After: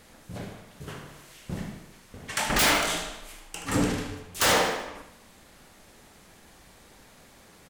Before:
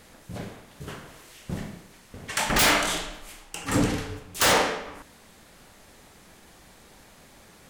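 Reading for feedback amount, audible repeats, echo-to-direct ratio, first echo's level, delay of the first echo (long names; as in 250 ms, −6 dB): 49%, 5, −8.5 dB, −9.5 dB, 76 ms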